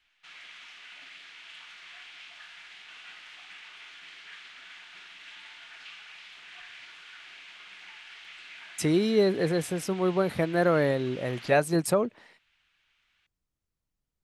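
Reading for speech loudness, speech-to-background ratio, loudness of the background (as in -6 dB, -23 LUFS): -26.5 LUFS, 19.0 dB, -45.5 LUFS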